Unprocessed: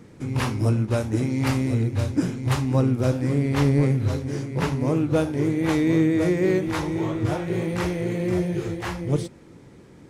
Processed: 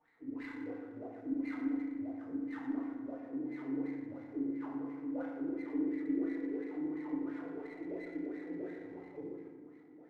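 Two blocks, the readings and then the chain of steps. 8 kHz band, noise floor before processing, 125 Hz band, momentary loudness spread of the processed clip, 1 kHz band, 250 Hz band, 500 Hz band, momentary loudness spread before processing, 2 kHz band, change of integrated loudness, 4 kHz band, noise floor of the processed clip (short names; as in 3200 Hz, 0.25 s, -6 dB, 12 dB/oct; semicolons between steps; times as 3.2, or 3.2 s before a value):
under -35 dB, -48 dBFS, -36.5 dB, 10 LU, -19.5 dB, -13.0 dB, -19.0 dB, 6 LU, -18.0 dB, -16.5 dB, under -30 dB, -56 dBFS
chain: reverse; compressor 6:1, threshold -28 dBFS, peak gain reduction 12 dB; reverse; wah 2.9 Hz 260–2100 Hz, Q 21; resonator 53 Hz, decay 1.7 s, mix 60%; FDN reverb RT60 1.3 s, low-frequency decay 1.45×, high-frequency decay 0.65×, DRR -9 dB; running maximum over 3 samples; gain +1 dB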